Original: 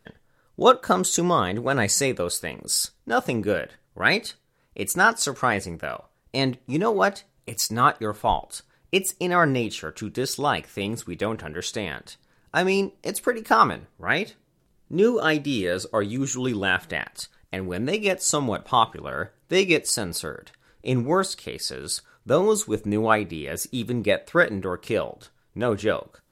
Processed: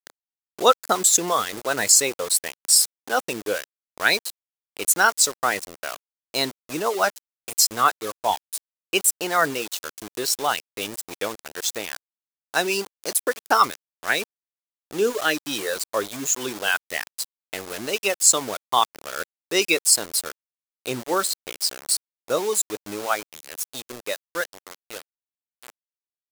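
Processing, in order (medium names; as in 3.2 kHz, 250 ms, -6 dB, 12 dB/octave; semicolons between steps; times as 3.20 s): fade out at the end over 4.97 s; reverb removal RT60 0.68 s; high-pass 61 Hz 24 dB/octave; small samples zeroed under -31 dBFS; tone controls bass -14 dB, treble +9 dB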